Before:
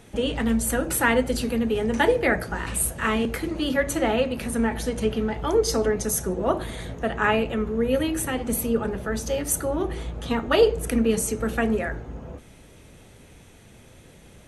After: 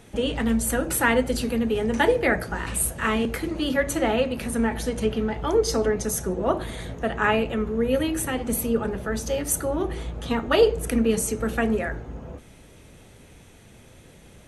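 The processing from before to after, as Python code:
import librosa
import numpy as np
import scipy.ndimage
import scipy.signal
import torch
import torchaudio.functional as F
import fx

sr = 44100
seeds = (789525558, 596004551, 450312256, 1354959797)

y = fx.high_shelf(x, sr, hz=9400.0, db=-5.0, at=(5.06, 6.67))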